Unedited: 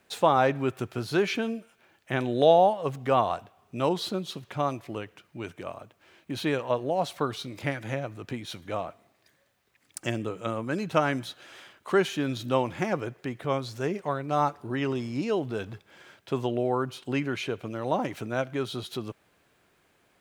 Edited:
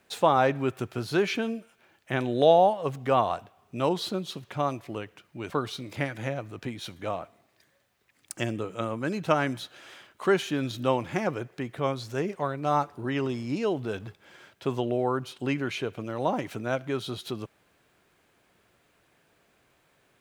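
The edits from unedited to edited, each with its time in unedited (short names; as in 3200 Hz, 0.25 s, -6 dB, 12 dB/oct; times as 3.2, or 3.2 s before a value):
5.5–7.16 cut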